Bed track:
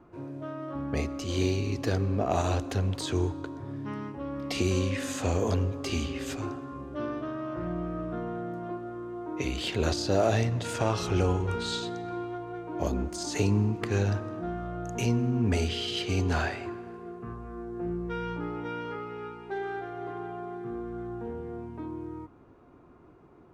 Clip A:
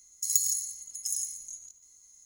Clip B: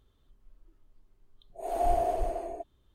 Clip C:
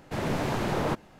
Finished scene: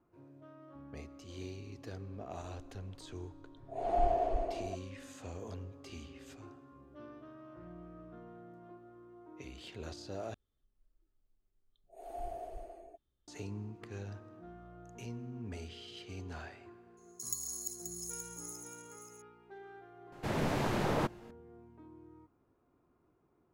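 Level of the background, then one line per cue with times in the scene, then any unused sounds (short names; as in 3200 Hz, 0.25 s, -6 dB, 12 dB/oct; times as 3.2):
bed track -17.5 dB
2.13 add B -3 dB + Bessel low-pass 4300 Hz, order 4
10.34 replace with B -15.5 dB + notch 1000 Hz, Q 7
16.97 add A -13 dB + regenerating reverse delay 0.265 s, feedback 57%, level -3.5 dB
20.12 add C -4 dB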